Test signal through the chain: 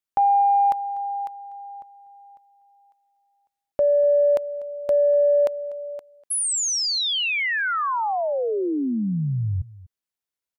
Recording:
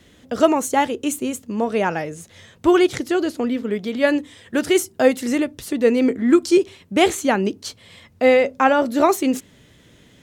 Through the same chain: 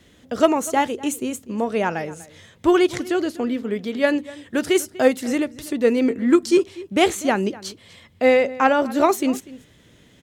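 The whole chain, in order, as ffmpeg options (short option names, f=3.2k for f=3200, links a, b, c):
-filter_complex "[0:a]aeval=exprs='0.841*(cos(1*acos(clip(val(0)/0.841,-1,1)))-cos(1*PI/2))+0.0531*(cos(3*acos(clip(val(0)/0.841,-1,1)))-cos(3*PI/2))':c=same,asplit=2[a][b];[b]adelay=244.9,volume=-19dB,highshelf=f=4k:g=-5.51[c];[a][c]amix=inputs=2:normalize=0"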